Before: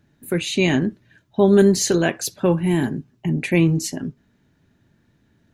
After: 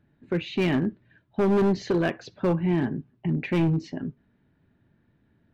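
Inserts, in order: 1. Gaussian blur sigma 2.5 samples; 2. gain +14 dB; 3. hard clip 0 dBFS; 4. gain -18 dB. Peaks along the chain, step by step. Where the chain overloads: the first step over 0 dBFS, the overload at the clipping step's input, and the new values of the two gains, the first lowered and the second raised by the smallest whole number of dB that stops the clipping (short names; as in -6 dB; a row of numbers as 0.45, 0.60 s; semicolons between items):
-4.0, +10.0, 0.0, -18.0 dBFS; step 2, 10.0 dB; step 2 +4 dB, step 4 -8 dB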